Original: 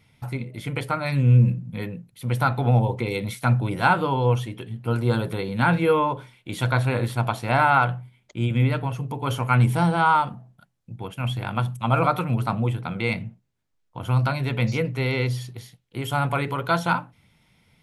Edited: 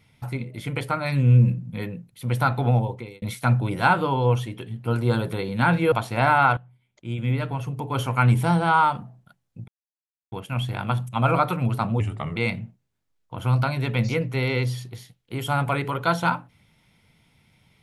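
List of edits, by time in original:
0:02.65–0:03.22: fade out
0:05.92–0:07.24: remove
0:07.89–0:09.09: fade in, from −20 dB
0:11.00: splice in silence 0.64 s
0:12.68–0:12.99: play speed 87%

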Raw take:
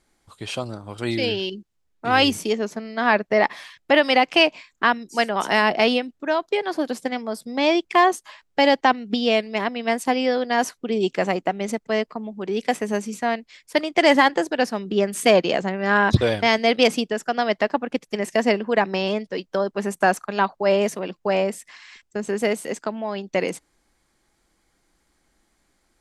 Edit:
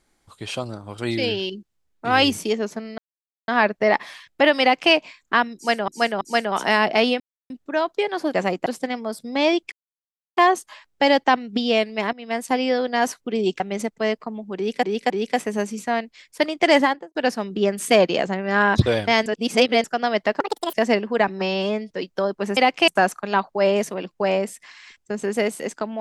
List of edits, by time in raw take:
0:02.98: splice in silence 0.50 s
0:04.11–0:04.42: duplicate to 0:19.93
0:05.05–0:05.38: repeat, 3 plays
0:06.04: splice in silence 0.30 s
0:07.94: splice in silence 0.65 s
0:09.70–0:10.23: fade in equal-power, from −15 dB
0:11.17–0:11.49: move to 0:06.88
0:12.45–0:12.72: repeat, 3 plays
0:14.08–0:14.50: fade out and dull
0:16.61–0:17.19: reverse
0:17.75–0:18.31: play speed 166%
0:18.85–0:19.27: time-stretch 1.5×

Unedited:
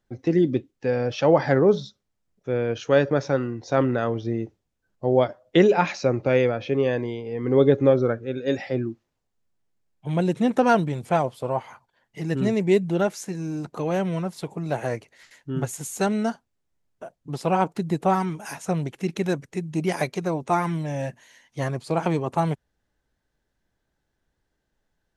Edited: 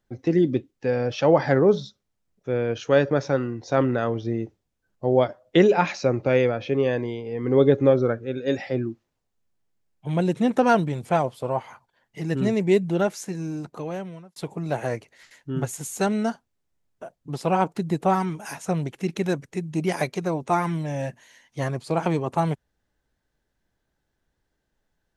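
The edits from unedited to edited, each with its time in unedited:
0:13.42–0:14.36: fade out

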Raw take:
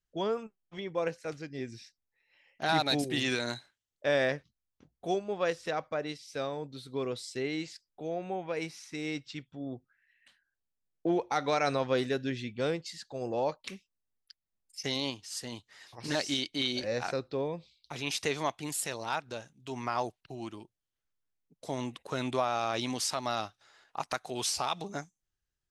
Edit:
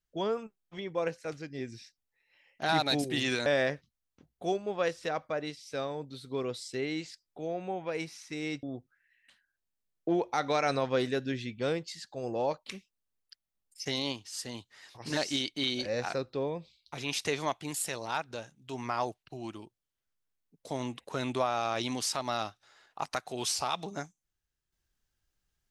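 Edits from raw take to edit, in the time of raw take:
0:03.46–0:04.08: remove
0:09.25–0:09.61: remove

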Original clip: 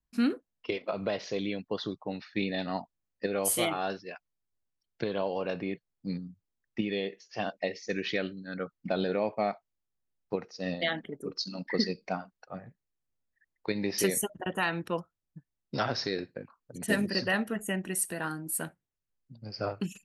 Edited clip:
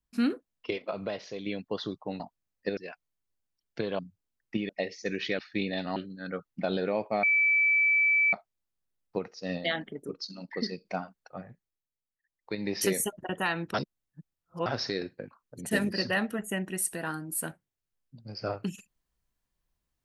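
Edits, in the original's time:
0:00.73–0:01.46: fade out, to −7.5 dB
0:02.20–0:02.77: move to 0:08.23
0:03.34–0:04.00: remove
0:05.22–0:06.23: remove
0:06.93–0:07.53: remove
0:09.50: insert tone 2,310 Hz −20.5 dBFS 1.10 s
0:11.28–0:12.02: clip gain −4.5 dB
0:12.63–0:13.90: duck −12 dB, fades 0.47 s
0:14.91–0:15.83: reverse

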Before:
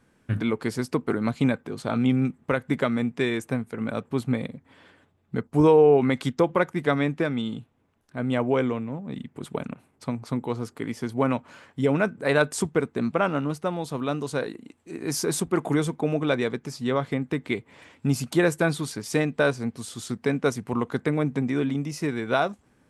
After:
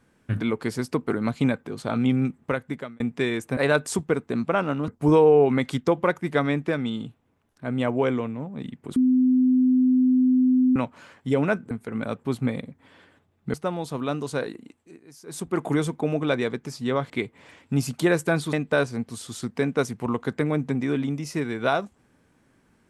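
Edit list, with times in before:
0:02.44–0:03.00: fade out
0:03.57–0:05.40: swap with 0:12.23–0:13.54
0:09.48–0:11.28: beep over 255 Hz −15.5 dBFS
0:14.51–0:15.75: duck −21 dB, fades 0.50 s equal-power
0:17.10–0:17.43: remove
0:18.86–0:19.20: remove

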